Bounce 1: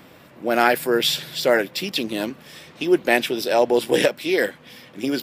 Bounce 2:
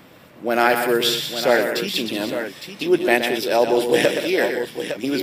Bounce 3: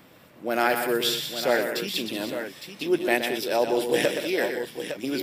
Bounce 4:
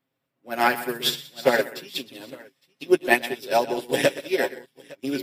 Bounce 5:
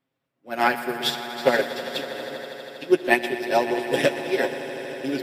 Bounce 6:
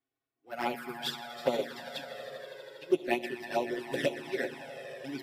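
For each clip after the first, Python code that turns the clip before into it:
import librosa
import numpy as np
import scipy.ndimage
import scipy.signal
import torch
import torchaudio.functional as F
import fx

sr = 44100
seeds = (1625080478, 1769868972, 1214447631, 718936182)

y1 = fx.echo_multitap(x, sr, ms=(122, 193, 859), db=(-7.5, -11.5, -9.0))
y2 = fx.high_shelf(y1, sr, hz=7200.0, db=4.0)
y2 = y2 * 10.0 ** (-6.0 / 20.0)
y3 = y2 + 0.69 * np.pad(y2, (int(7.4 * sr / 1000.0), 0))[:len(y2)]
y3 = fx.upward_expand(y3, sr, threshold_db=-41.0, expansion=2.5)
y3 = y3 * 10.0 ** (6.5 / 20.0)
y4 = fx.high_shelf(y3, sr, hz=7800.0, db=-8.5)
y4 = fx.echo_swell(y4, sr, ms=80, loudest=5, wet_db=-17.0)
y5 = fx.env_flanger(y4, sr, rest_ms=2.7, full_db=-16.0)
y5 = y5 * 10.0 ** (-7.5 / 20.0)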